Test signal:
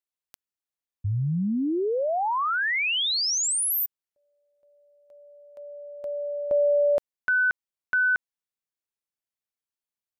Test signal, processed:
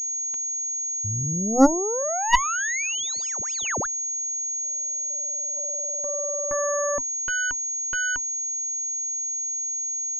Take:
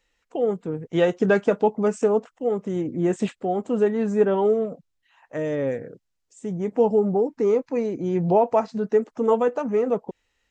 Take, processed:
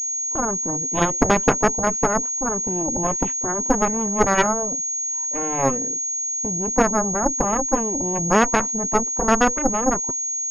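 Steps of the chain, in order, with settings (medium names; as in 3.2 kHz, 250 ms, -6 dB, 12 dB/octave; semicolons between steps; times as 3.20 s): bass shelf 60 Hz -9 dB; small resonant body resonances 270/970 Hz, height 16 dB, ringing for 90 ms; Chebyshev shaper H 2 -12 dB, 4 -6 dB, 7 -10 dB, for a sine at -3.5 dBFS; class-D stage that switches slowly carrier 6.6 kHz; trim -3.5 dB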